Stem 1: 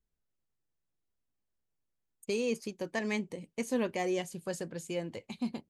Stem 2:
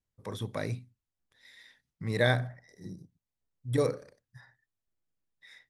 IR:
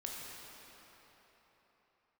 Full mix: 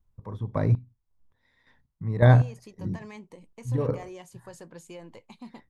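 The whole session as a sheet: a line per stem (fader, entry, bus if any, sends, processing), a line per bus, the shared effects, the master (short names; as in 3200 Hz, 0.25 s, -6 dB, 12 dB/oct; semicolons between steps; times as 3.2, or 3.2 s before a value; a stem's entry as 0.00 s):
-1.0 dB, 0.00 s, no send, limiter -29.5 dBFS, peak gain reduction 9 dB; auto duck -6 dB, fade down 0.80 s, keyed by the second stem
0.0 dB, 0.00 s, no send, tilt -4.5 dB/oct; chopper 1.8 Hz, depth 65%, duty 35%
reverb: off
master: bell 1000 Hz +10.5 dB 0.72 oct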